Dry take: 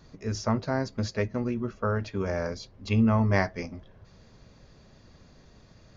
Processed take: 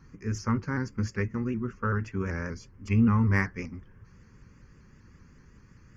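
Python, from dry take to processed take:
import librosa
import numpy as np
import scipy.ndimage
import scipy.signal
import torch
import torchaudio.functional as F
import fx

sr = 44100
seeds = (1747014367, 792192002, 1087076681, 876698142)

y = fx.cheby_harmonics(x, sr, harmonics=(6,), levels_db=(-34,), full_scale_db=-11.0)
y = fx.fixed_phaser(y, sr, hz=1600.0, stages=4)
y = fx.vibrato_shape(y, sr, shape='saw_up', rate_hz=5.2, depth_cents=100.0)
y = y * 10.0 ** (1.5 / 20.0)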